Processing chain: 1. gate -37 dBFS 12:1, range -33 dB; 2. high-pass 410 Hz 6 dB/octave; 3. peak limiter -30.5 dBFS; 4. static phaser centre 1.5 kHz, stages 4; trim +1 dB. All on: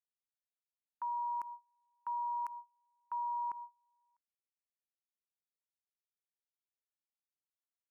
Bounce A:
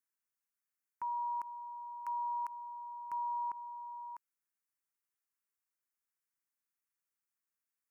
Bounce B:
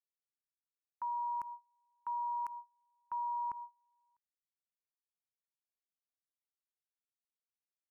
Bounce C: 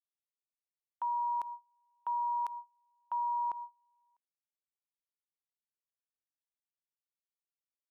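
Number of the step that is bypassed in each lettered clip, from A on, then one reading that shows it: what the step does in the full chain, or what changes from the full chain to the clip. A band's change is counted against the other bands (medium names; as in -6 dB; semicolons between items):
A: 1, momentary loudness spread change -4 LU; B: 2, crest factor change -1.5 dB; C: 4, crest factor change -2.0 dB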